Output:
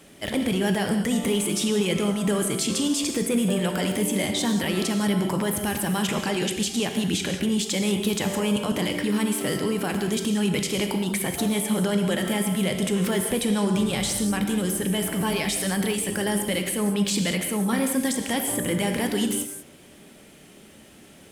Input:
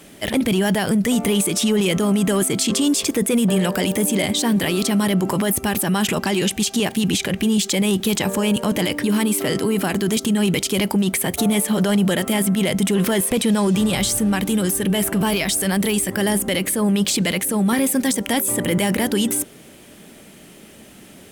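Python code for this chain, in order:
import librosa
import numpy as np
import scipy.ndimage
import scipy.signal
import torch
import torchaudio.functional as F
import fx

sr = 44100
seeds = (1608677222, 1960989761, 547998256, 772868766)

y = fx.peak_eq(x, sr, hz=16000.0, db=-10.5, octaves=0.36)
y = fx.rev_gated(y, sr, seeds[0], gate_ms=220, shape='flat', drr_db=4.5)
y = F.gain(torch.from_numpy(y), -6.0).numpy()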